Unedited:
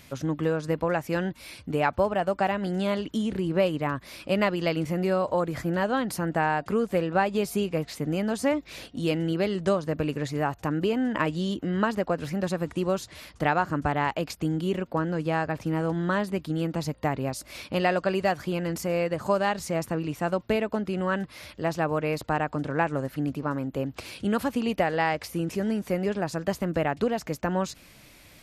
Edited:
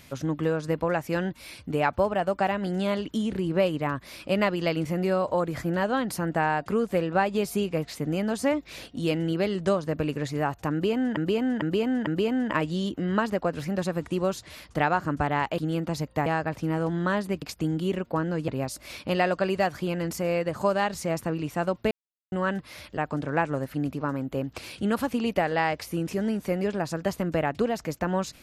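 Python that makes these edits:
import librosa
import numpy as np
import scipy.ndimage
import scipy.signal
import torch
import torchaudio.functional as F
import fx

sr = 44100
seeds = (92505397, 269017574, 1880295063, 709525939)

y = fx.edit(x, sr, fx.repeat(start_s=10.72, length_s=0.45, count=4),
    fx.swap(start_s=14.23, length_s=1.06, other_s=16.45, other_length_s=0.68),
    fx.silence(start_s=20.56, length_s=0.41),
    fx.cut(start_s=21.62, length_s=0.77), tone=tone)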